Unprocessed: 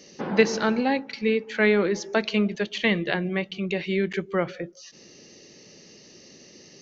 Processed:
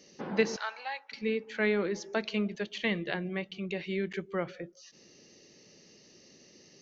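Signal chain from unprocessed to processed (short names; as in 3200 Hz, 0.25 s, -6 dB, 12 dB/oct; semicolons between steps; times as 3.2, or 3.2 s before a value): 0.56–1.12 HPF 780 Hz 24 dB/oct; gain -8 dB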